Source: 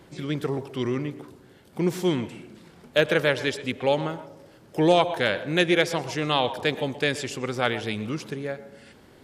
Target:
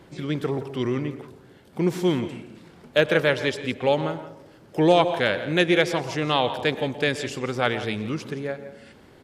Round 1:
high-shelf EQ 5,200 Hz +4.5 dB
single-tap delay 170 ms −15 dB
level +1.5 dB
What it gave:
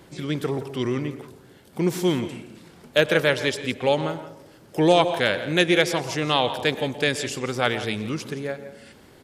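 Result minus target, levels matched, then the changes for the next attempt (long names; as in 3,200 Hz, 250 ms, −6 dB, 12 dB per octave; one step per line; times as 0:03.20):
8,000 Hz band +5.5 dB
change: high-shelf EQ 5,200 Hz −5 dB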